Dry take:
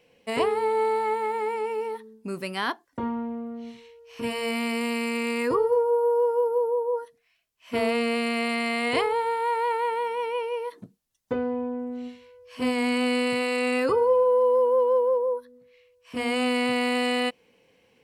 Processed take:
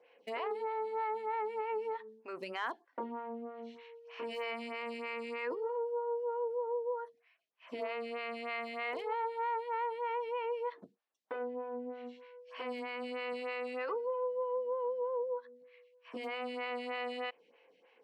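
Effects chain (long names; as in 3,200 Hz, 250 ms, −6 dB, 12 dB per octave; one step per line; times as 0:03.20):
brickwall limiter −23 dBFS, peak gain reduction 11 dB
downward compressor 20 to 1, threshold −30 dBFS, peak gain reduction 5.5 dB
band-pass filter 440–3,200 Hz
hard clipping −27 dBFS, distortion −38 dB
phaser with staggered stages 3.2 Hz
level +1.5 dB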